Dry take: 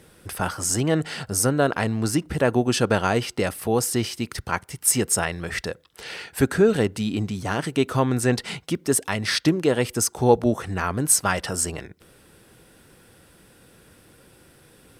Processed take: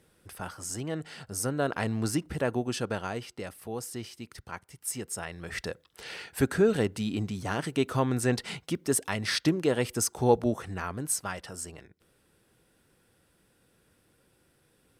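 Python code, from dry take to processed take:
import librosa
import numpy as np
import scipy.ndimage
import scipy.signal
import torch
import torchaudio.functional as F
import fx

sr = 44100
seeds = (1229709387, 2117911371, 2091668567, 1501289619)

y = fx.gain(x, sr, db=fx.line((1.16, -12.5), (1.97, -5.0), (3.35, -14.5), (5.14, -14.5), (5.67, -5.5), (10.36, -5.5), (11.47, -14.0)))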